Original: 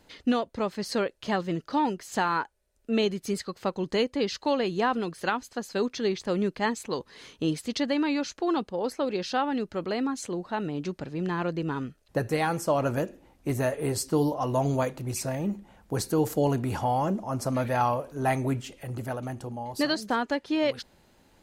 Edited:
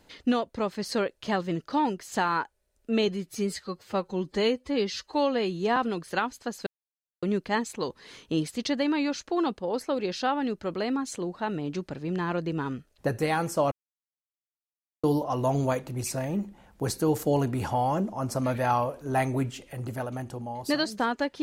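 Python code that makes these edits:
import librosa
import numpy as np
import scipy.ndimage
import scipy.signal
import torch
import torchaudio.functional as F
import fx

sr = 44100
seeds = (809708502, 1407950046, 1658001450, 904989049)

y = fx.edit(x, sr, fx.stretch_span(start_s=3.08, length_s=1.79, factor=1.5),
    fx.silence(start_s=5.77, length_s=0.56),
    fx.silence(start_s=12.82, length_s=1.32), tone=tone)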